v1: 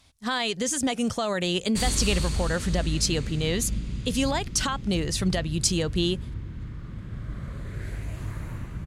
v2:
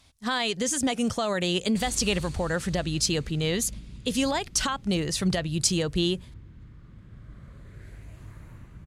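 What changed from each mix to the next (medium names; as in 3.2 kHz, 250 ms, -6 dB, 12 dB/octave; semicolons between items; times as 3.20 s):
background -11.0 dB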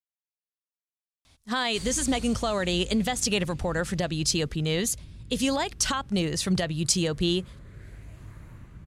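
speech: entry +1.25 s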